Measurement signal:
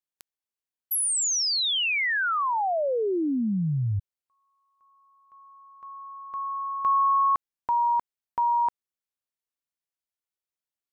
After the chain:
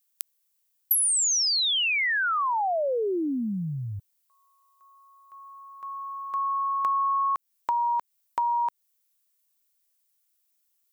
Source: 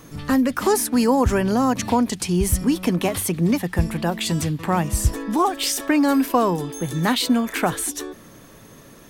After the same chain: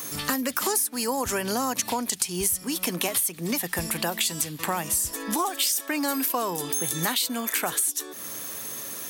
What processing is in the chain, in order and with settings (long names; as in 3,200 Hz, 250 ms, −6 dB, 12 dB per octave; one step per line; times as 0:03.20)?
RIAA equalisation recording
downward compressor 6 to 1, threshold −29 dBFS
level +5 dB